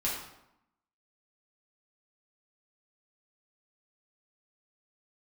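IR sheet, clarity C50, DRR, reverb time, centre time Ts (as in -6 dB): 2.0 dB, -6.5 dB, 0.85 s, 52 ms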